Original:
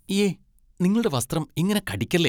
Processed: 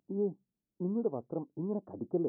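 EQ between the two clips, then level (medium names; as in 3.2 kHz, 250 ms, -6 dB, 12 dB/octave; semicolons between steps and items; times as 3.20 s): Gaussian low-pass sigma 13 samples; high-pass 330 Hz 12 dB/octave; -3.5 dB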